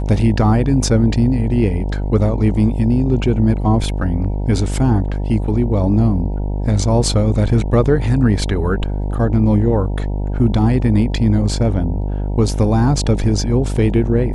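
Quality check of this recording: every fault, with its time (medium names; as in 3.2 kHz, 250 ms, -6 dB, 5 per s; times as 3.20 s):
buzz 50 Hz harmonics 19 -20 dBFS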